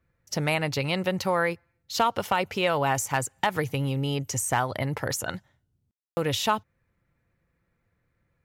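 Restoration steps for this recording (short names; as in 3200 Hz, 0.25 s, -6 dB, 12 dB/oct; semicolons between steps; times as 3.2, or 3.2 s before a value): clip repair -12.5 dBFS; room tone fill 5.91–6.17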